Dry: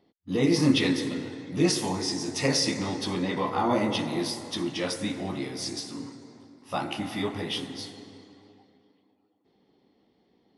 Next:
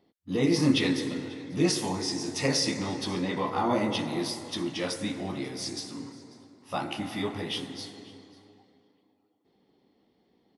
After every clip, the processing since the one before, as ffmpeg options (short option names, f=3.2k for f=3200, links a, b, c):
-af "aecho=1:1:543:0.075,volume=-1.5dB"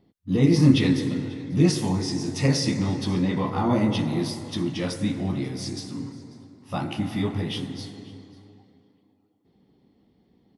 -af "bass=f=250:g=13,treble=f=4k:g=-1"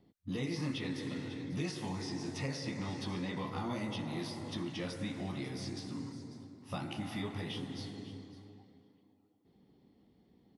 -filter_complex "[0:a]acrossover=split=550|1500|3700[a][b][c][d];[a]acompressor=threshold=-35dB:ratio=4[e];[b]acompressor=threshold=-43dB:ratio=4[f];[c]acompressor=threshold=-44dB:ratio=4[g];[d]acompressor=threshold=-49dB:ratio=4[h];[e][f][g][h]amix=inputs=4:normalize=0,volume=-4dB"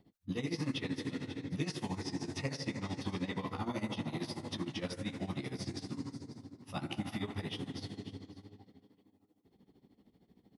-af "tremolo=f=13:d=0.81,volume=3.5dB"